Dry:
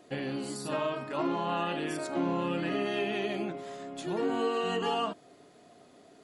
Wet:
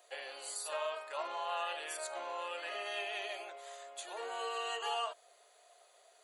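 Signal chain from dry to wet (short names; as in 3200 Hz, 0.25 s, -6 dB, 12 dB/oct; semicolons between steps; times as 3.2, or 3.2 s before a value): steep high-pass 520 Hz 36 dB/oct; high shelf 4600 Hz +10.5 dB; notch 5300 Hz, Q 6; gain -5.5 dB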